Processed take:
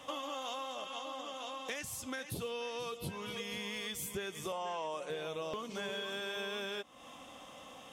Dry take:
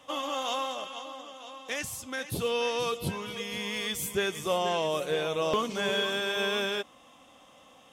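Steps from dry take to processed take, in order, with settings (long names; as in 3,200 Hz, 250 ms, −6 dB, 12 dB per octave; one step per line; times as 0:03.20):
downward compressor 5 to 1, threshold −43 dBFS, peak gain reduction 18 dB
0:04.52–0:05.10: loudspeaker in its box 230–9,200 Hz, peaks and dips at 380 Hz −5 dB, 950 Hz +8 dB, 3,800 Hz −7 dB
level +4 dB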